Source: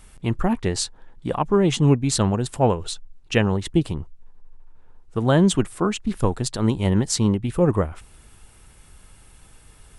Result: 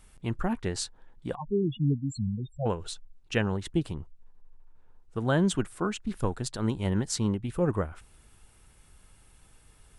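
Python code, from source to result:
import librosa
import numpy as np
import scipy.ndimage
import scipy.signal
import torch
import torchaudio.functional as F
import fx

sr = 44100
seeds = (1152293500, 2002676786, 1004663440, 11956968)

y = fx.dynamic_eq(x, sr, hz=1500.0, q=4.4, threshold_db=-49.0, ratio=4.0, max_db=6)
y = fx.spec_topn(y, sr, count=4, at=(1.34, 2.65), fade=0.02)
y = F.gain(torch.from_numpy(y), -8.0).numpy()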